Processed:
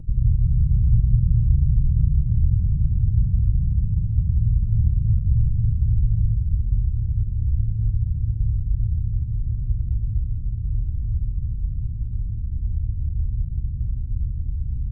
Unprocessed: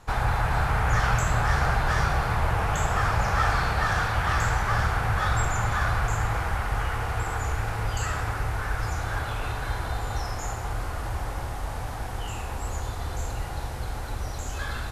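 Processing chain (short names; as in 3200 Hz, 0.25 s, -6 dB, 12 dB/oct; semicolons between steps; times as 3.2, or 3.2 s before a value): inverse Chebyshev low-pass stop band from 780 Hz, stop band 70 dB; upward compressor, threshold -36 dBFS; gain +8 dB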